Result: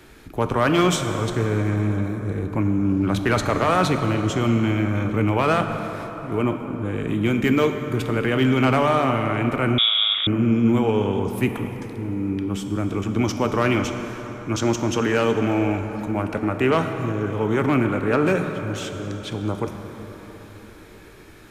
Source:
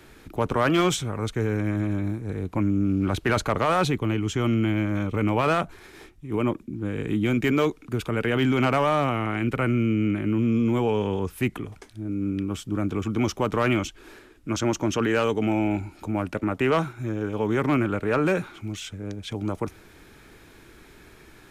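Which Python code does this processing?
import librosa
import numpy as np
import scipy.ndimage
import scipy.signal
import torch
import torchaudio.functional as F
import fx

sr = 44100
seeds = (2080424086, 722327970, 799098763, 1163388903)

y = fx.rev_plate(x, sr, seeds[0], rt60_s=4.7, hf_ratio=0.5, predelay_ms=0, drr_db=5.5)
y = fx.freq_invert(y, sr, carrier_hz=3600, at=(9.78, 10.27))
y = y * librosa.db_to_amplitude(2.0)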